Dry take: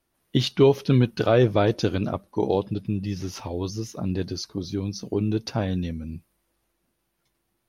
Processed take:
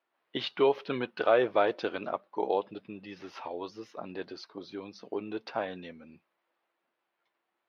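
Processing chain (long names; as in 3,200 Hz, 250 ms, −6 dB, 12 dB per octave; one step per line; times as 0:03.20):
high-pass filter 640 Hz 12 dB per octave
high-frequency loss of the air 380 metres
level +2 dB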